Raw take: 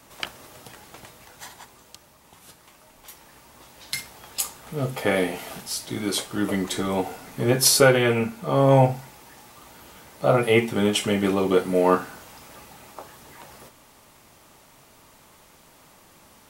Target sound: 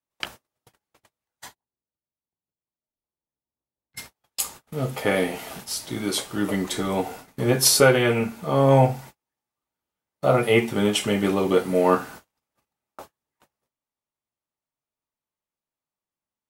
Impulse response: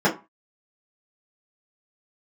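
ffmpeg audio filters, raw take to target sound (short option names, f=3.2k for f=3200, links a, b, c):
-filter_complex "[0:a]asplit=3[a][b][c];[a]afade=t=out:st=1.54:d=0.02[d];[b]adynamicsmooth=sensitivity=0.5:basefreq=740,afade=t=in:st=1.54:d=0.02,afade=t=out:st=3.96:d=0.02[e];[c]afade=t=in:st=3.96:d=0.02[f];[d][e][f]amix=inputs=3:normalize=0,agate=range=-41dB:threshold=-40dB:ratio=16:detection=peak"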